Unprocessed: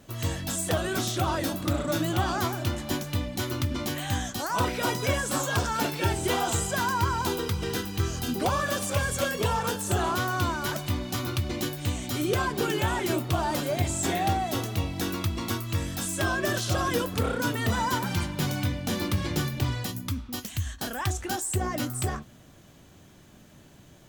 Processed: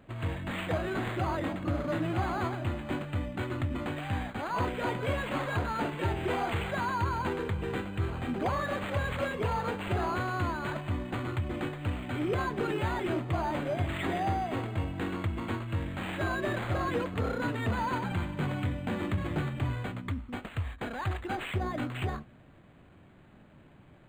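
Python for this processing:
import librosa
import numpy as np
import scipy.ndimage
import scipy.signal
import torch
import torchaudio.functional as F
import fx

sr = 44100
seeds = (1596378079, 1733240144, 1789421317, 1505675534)

p1 = np.clip(x, -10.0 ** (-23.5 / 20.0), 10.0 ** (-23.5 / 20.0))
p2 = x + (p1 * librosa.db_to_amplitude(-3.0))
p3 = np.interp(np.arange(len(p2)), np.arange(len(p2))[::8], p2[::8])
y = p3 * librosa.db_to_amplitude(-7.5)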